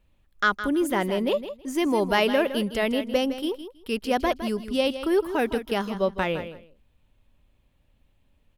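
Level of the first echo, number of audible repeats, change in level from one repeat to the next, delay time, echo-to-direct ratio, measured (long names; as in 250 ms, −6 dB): −11.5 dB, 2, −15.5 dB, 161 ms, −11.5 dB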